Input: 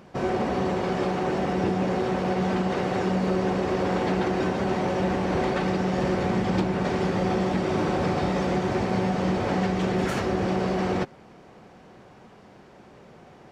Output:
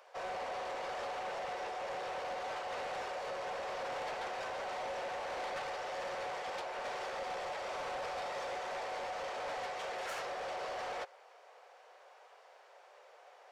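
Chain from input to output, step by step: steep high-pass 490 Hz 48 dB/octave; saturation -30.5 dBFS, distortion -11 dB; trim -5.5 dB

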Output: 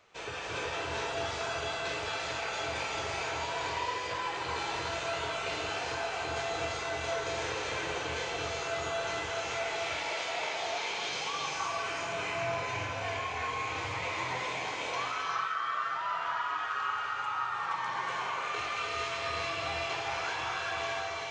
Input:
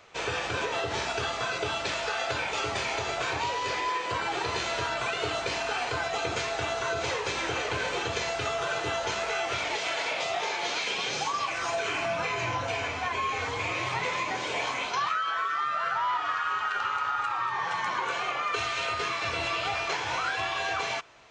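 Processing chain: gated-style reverb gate 420 ms rising, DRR -3 dB; trim -9 dB

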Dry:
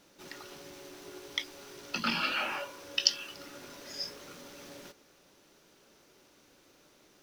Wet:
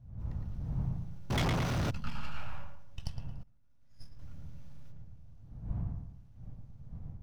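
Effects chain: partial rectifier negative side -12 dB; wind noise 340 Hz -45 dBFS; in parallel at -11 dB: hysteresis with a dead band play -36.5 dBFS; on the sum: dynamic bell 1 kHz, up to +5 dB, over -49 dBFS, Q 1.4; on a send: filtered feedback delay 112 ms, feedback 43%, low-pass 1.8 kHz, level -3.5 dB; on the sum: level rider gain up to 5.5 dB; FFT filter 130 Hz 0 dB, 370 Hz -28 dB, 720 Hz -19 dB, 4.9 kHz -24 dB; 1.30–1.91 s: overdrive pedal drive 43 dB, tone 4.5 kHz, clips at -22 dBFS; 3.43–4.19 s: expander -32 dBFS

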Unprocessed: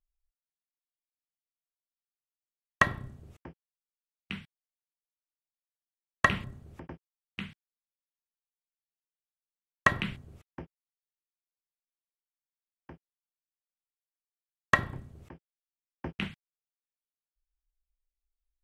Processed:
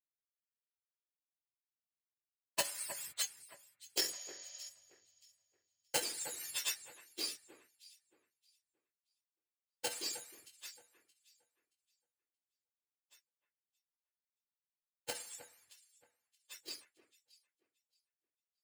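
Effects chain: spectrum inverted on a logarithmic axis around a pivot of 1 kHz; Doppler pass-by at 4.60 s, 26 m/s, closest 8.9 m; in parallel at -4 dB: sample-rate reducer 3.6 kHz, jitter 0%; on the sum: compression 6:1, threshold -52 dBFS, peak gain reduction 22.5 dB; tilt EQ +4 dB/octave; spectral replace 4.15–4.66 s, 520–7400 Hz before; high-order bell 4 kHz +9.5 dB 2.9 oct; band-stop 5.9 kHz, Q 9.9; on a send: echo whose repeats swap between lows and highs 312 ms, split 2.3 kHz, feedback 63%, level -8 dB; on the sum: three bands expanded up and down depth 70%; trim +8.5 dB

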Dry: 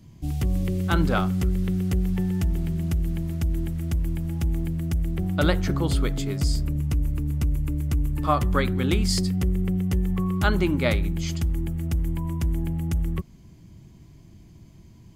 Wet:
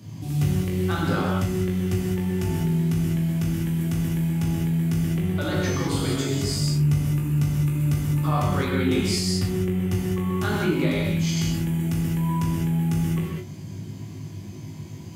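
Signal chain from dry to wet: high-pass 98 Hz 24 dB/octave; in parallel at -2 dB: compressor with a negative ratio -37 dBFS; on the sum: peak limiter -16 dBFS, peak gain reduction 10 dB; flutter echo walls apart 3.3 m, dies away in 0.21 s; gated-style reverb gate 230 ms flat, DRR -3.5 dB; trim -3.5 dB

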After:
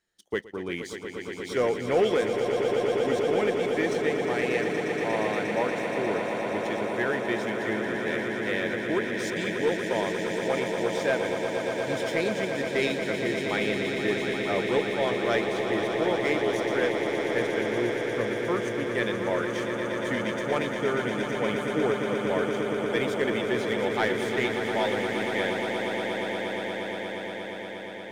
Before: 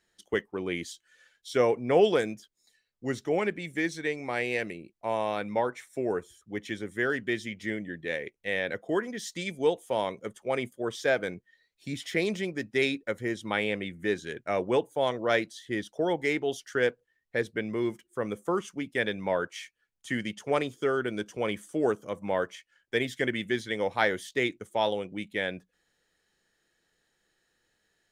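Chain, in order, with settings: waveshaping leveller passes 1; echo with a slow build-up 118 ms, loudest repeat 8, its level -9 dB; trim -4.5 dB

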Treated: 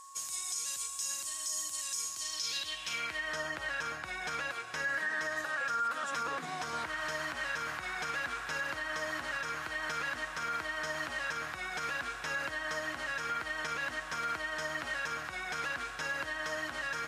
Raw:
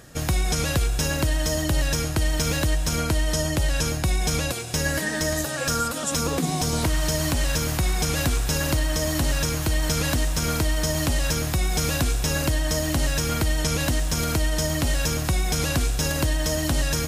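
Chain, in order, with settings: band-pass sweep 7.7 kHz -> 1.5 kHz, 2.06–3.37 s; whistle 1.1 kHz -52 dBFS; peak limiter -28 dBFS, peak gain reduction 10 dB; trim +2 dB

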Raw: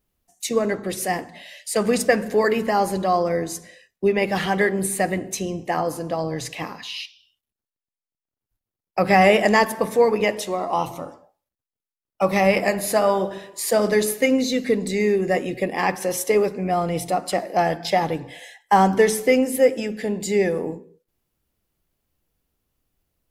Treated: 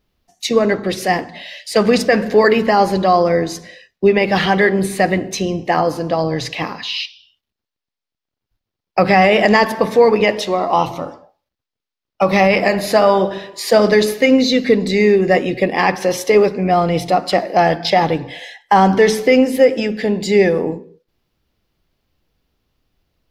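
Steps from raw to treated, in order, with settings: resonant high shelf 6.3 kHz -10 dB, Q 1.5; loudness maximiser +8.5 dB; trim -1 dB

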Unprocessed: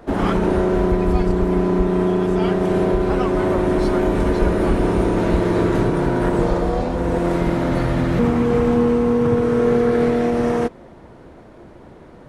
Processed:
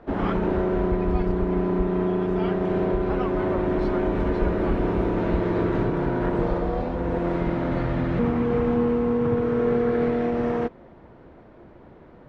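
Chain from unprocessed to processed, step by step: low-pass 3.1 kHz 12 dB/octave; trim -5.5 dB

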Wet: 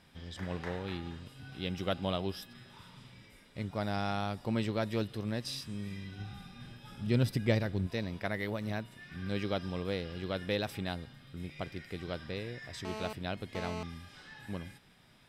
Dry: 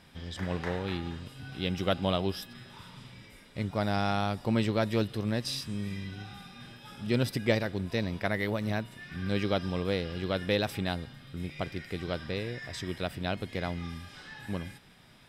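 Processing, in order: 6.19–7.87 s: bass shelf 170 Hz +10.5 dB; 12.85–13.83 s: mobile phone buzz -36 dBFS; trim -5 dB

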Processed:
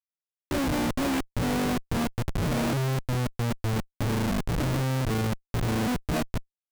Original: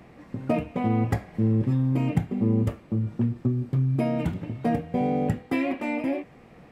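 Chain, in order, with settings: reverse the whole clip; Schmitt trigger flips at -29 dBFS

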